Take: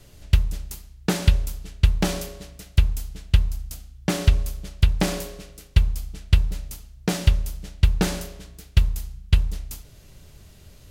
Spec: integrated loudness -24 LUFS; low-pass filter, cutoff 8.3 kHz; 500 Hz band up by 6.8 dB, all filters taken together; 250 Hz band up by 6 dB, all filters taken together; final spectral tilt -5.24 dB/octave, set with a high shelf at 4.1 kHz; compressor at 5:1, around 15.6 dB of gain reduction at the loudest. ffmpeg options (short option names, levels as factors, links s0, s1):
-af "lowpass=8300,equalizer=f=250:t=o:g=8,equalizer=f=500:t=o:g=6,highshelf=f=4100:g=5,acompressor=threshold=0.0398:ratio=5,volume=3.76"